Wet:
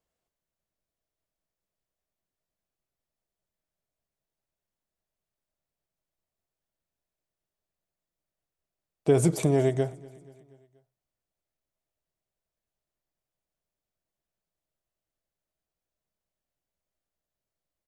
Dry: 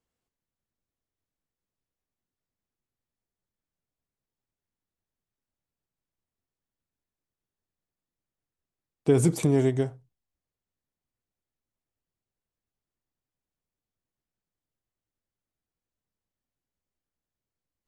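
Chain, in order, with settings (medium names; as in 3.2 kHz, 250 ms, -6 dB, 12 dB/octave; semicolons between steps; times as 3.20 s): graphic EQ with 31 bands 100 Hz -7 dB, 250 Hz -6 dB, 630 Hz +9 dB; on a send: feedback delay 240 ms, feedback 58%, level -23 dB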